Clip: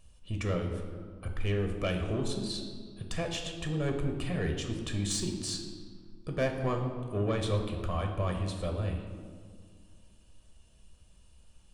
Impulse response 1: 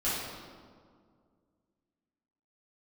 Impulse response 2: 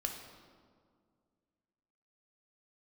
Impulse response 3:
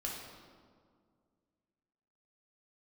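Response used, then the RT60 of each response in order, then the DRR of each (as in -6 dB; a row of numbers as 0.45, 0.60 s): 2; 2.0, 2.0, 2.0 s; -11.5, 2.5, -3.0 dB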